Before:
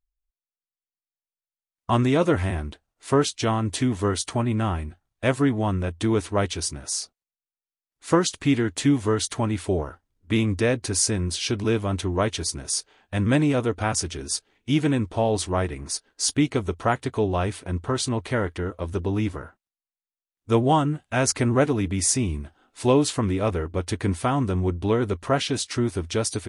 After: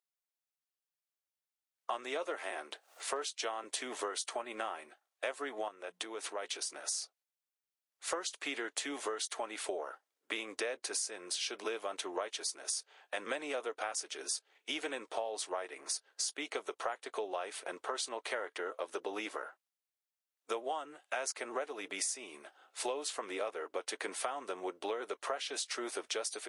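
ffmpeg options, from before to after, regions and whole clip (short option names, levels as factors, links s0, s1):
-filter_complex "[0:a]asettb=1/sr,asplit=3[s0][s1][s2];[s0]atrim=end=2.274[s3];[s1]atrim=start=2.27:end=3.64,asetpts=PTS-STARTPTS,afade=t=in:d=0.004:c=qsin,afade=t=out:st=1.366:d=0.004:c=qsin,highpass=f=220:w=0.5412,highpass=f=220:w=1.3066,acompressor=mode=upward:threshold=0.0158:ratio=2.5:attack=3.2:release=140:knee=2.83:detection=peak,asoftclip=type=hard:threshold=0.316[s4];[s2]atrim=start=3.636[s5];[s3][s4]acrossfade=d=0.004:c1=hsin:c2=qsin[s6];[s6][s5]acrossfade=d=0.004:c1=qsin:c2=hsin,asettb=1/sr,asplit=3[s7][s8][s9];[s7]atrim=end=5.684[s10];[s8]atrim=start=5.68:end=6.74,asetpts=PTS-STARTPTS,afade=t=in:d=0.004:c=qsin,afade=t=out:st=1.056:d=0.004:c=qsin,bandreject=f=60:t=h:w=6,bandreject=f=120:t=h:w=6,bandreject=f=180:t=h:w=6,bandreject=f=240:t=h:w=6,acompressor=threshold=0.0282:ratio=6:attack=3.2:release=140:knee=1:detection=peak[s11];[s9]atrim=start=6.736[s12];[s10][s11]acrossfade=d=0.004:c1=hsin:c2=qsin[s13];[s13][s12]acrossfade=d=0.004:c1=qsin:c2=hsin,highpass=f=480:w=0.5412,highpass=f=480:w=1.3066,bandreject=f=980:w=17,acompressor=threshold=0.02:ratio=10"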